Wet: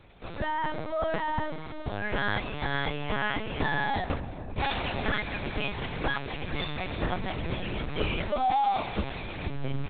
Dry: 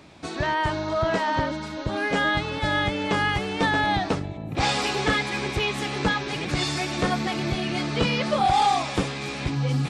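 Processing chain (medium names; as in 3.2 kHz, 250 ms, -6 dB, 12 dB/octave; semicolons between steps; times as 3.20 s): CVSD coder 64 kbps; filtered feedback delay 378 ms, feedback 59%, low-pass 1.2 kHz, level -16.5 dB; LPC vocoder at 8 kHz pitch kept; trim -5 dB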